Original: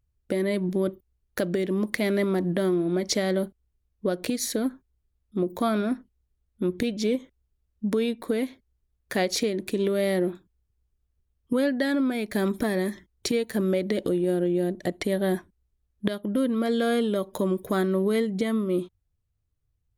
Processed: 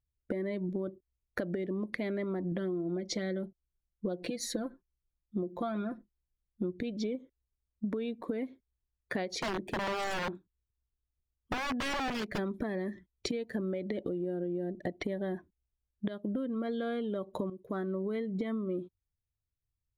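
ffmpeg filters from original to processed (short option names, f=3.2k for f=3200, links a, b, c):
-filter_complex "[0:a]asettb=1/sr,asplit=3[a][b][c];[a]atrim=end=2.514[d];[b]atrim=start=2.51:end=6.72,asetpts=PTS-STARTPTS,afade=t=in:d=0.004:c=qsin,afade=t=out:st=4.206:d=0.004:c=qsin,aecho=1:1:5.8:0.59,atrim=end_sample=185661[e];[c]atrim=start=6.716[f];[d][e]acrossfade=d=0.004:c1=hsin:c2=qsin[g];[g][f]acrossfade=d=0.004:c1=qsin:c2=hsin,asplit=3[h][i][j];[h]afade=t=out:st=9.39:d=0.02[k];[i]aeval=exprs='(mod(13.3*val(0)+1,2)-1)/13.3':c=same,afade=t=in:st=9.39:d=0.02,afade=t=out:st=12.37:d=0.02[l];[j]afade=t=in:st=12.37:d=0.02[m];[k][l][m]amix=inputs=3:normalize=0,asplit=2[n][o];[n]atrim=end=17.5,asetpts=PTS-STARTPTS,afade=t=out:st=17.496:d=0.004:c=hsin:silence=0.211349[p];[o]atrim=start=17.5,asetpts=PTS-STARTPTS,afade=t=in:d=0.94:silence=0.211349[q];[p][q]concat=n=2:v=0:a=1,aemphasis=mode=reproduction:type=cd,afftdn=nr=13:nf=-41,acompressor=threshold=-31dB:ratio=12"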